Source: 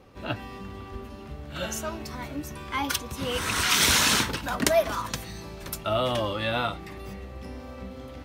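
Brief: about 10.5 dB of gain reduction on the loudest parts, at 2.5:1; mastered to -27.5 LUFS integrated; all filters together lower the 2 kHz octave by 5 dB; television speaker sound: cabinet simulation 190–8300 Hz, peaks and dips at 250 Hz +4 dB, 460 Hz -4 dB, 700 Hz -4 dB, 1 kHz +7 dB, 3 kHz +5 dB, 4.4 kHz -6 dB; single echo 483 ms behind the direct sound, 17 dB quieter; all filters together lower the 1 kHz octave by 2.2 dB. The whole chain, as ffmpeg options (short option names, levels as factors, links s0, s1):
-af "equalizer=f=1000:t=o:g=-4,equalizer=f=2000:t=o:g=-7,acompressor=threshold=0.0178:ratio=2.5,highpass=f=190:w=0.5412,highpass=f=190:w=1.3066,equalizer=f=250:t=q:w=4:g=4,equalizer=f=460:t=q:w=4:g=-4,equalizer=f=700:t=q:w=4:g=-4,equalizer=f=1000:t=q:w=4:g=7,equalizer=f=3000:t=q:w=4:g=5,equalizer=f=4400:t=q:w=4:g=-6,lowpass=f=8300:w=0.5412,lowpass=f=8300:w=1.3066,aecho=1:1:483:0.141,volume=3.16"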